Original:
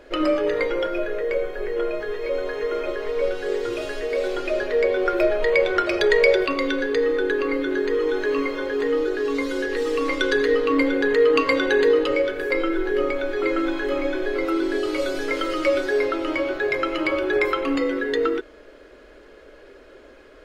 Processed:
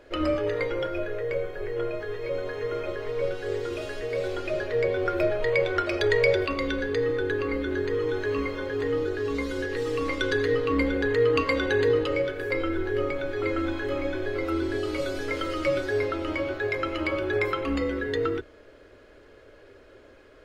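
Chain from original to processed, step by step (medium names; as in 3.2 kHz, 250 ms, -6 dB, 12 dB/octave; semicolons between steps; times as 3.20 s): octave divider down 2 oct, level -5 dB; trim -5 dB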